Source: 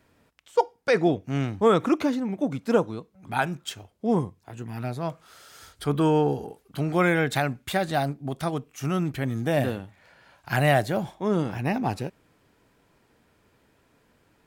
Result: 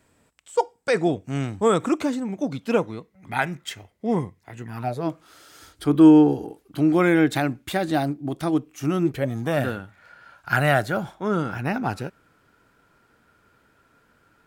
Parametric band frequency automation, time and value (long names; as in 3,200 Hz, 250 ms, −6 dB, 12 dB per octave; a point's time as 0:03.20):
parametric band +14.5 dB 0.27 octaves
0:02.30 7,900 Hz
0:02.82 2,000 Hz
0:04.64 2,000 Hz
0:05.08 310 Hz
0:09.02 310 Hz
0:09.58 1,400 Hz